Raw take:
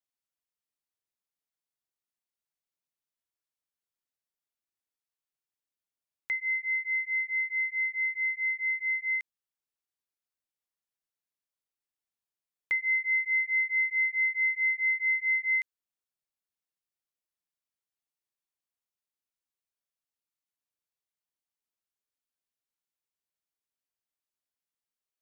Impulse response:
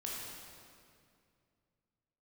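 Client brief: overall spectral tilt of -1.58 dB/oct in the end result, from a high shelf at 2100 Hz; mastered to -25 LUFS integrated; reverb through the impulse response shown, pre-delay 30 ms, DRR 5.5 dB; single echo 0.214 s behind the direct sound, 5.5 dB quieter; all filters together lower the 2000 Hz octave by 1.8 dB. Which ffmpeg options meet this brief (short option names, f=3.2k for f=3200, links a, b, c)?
-filter_complex "[0:a]equalizer=f=2k:t=o:g=-4.5,highshelf=f=2.1k:g=5.5,aecho=1:1:214:0.531,asplit=2[a][b];[1:a]atrim=start_sample=2205,adelay=30[c];[b][c]afir=irnorm=-1:irlink=0,volume=-6.5dB[d];[a][d]amix=inputs=2:normalize=0,volume=1dB"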